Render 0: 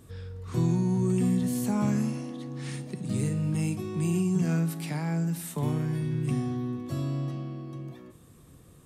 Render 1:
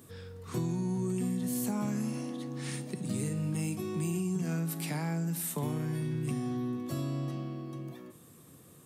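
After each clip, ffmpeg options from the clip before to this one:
-af "highpass=140,highshelf=f=11k:g=11,acompressor=threshold=-29dB:ratio=6"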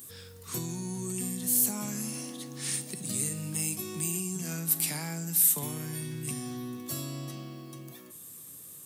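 -af "crystalizer=i=6:c=0,volume=-4.5dB"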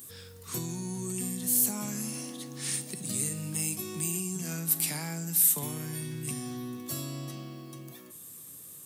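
-af anull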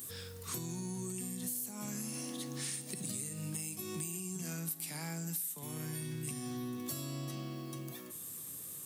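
-af "acrusher=bits=10:mix=0:aa=0.000001,acompressor=threshold=-38dB:ratio=10,volume=1.5dB"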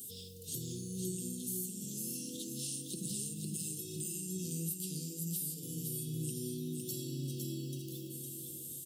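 -af "flanger=delay=4.8:depth=8.4:regen=38:speed=0.3:shape=sinusoidal,asuperstop=centerf=1200:order=20:qfactor=0.52,aecho=1:1:508|1016|1524|2032:0.631|0.221|0.0773|0.0271,volume=3dB"

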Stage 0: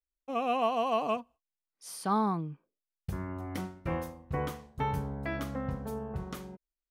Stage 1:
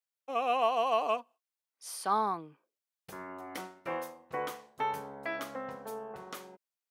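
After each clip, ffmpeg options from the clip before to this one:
-af "highpass=460,volume=1.5dB"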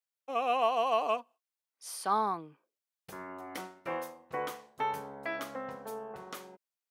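-af anull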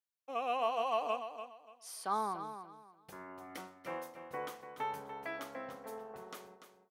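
-af "aecho=1:1:291|582|873:0.316|0.0791|0.0198,volume=-5.5dB"

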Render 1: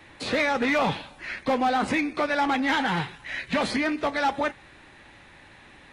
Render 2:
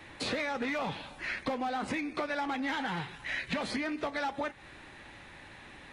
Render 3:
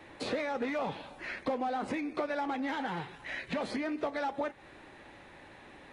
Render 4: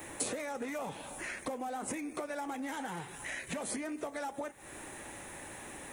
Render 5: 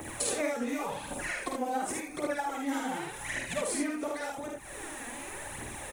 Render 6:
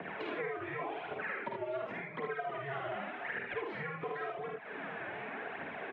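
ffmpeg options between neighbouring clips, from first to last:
-af "acompressor=threshold=-31dB:ratio=6"
-af "equalizer=f=480:t=o:w=2.4:g=8.5,volume=-6dB"
-af "acompressor=threshold=-46dB:ratio=2.5,aexciter=amount=15.7:drive=2.4:freq=6.6k,volume=5dB"
-filter_complex "[0:a]aphaser=in_gain=1:out_gain=1:delay=4.4:decay=0.69:speed=0.89:type=triangular,asplit=2[a][b];[b]aecho=0:1:50|76:0.668|0.668[c];[a][c]amix=inputs=2:normalize=0"
-filter_complex "[0:a]highpass=f=370:t=q:w=0.5412,highpass=f=370:t=q:w=1.307,lowpass=f=3k:t=q:w=0.5176,lowpass=f=3k:t=q:w=0.7071,lowpass=f=3k:t=q:w=1.932,afreqshift=-140,acrossover=split=510|2200[a][b][c];[a]acompressor=threshold=-48dB:ratio=4[d];[b]acompressor=threshold=-41dB:ratio=4[e];[c]acompressor=threshold=-54dB:ratio=4[f];[d][e][f]amix=inputs=3:normalize=0,volume=2.5dB"

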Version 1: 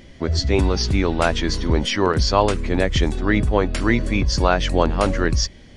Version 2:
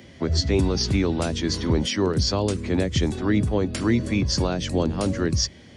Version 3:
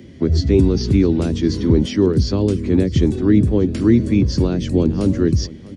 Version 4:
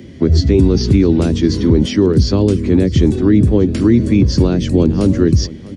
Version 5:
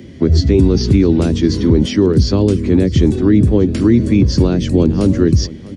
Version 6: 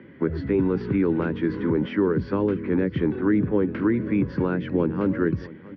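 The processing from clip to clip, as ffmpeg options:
-filter_complex "[0:a]highpass=f=73:w=0.5412,highpass=f=73:w=1.3066,acrossover=split=110|430|3900[a][b][c][d];[c]acompressor=threshold=-31dB:ratio=6[e];[a][b][e][d]amix=inputs=4:normalize=0"
-filter_complex "[0:a]acrossover=split=5800[a][b];[b]acompressor=threshold=-38dB:ratio=4:attack=1:release=60[c];[a][c]amix=inputs=2:normalize=0,lowshelf=f=500:t=q:w=1.5:g=9,aecho=1:1:655:0.1,volume=-2.5dB"
-af "alimiter=level_in=6dB:limit=-1dB:release=50:level=0:latency=1,volume=-1dB"
-af anull
-af "highpass=220,equalizer=f=240:t=q:w=4:g=-7,equalizer=f=360:t=q:w=4:g=-5,equalizer=f=670:t=q:w=4:g=-9,equalizer=f=960:t=q:w=4:g=4,equalizer=f=1.5k:t=q:w=4:g=7,lowpass=f=2.2k:w=0.5412,lowpass=f=2.2k:w=1.3066,volume=-4dB"

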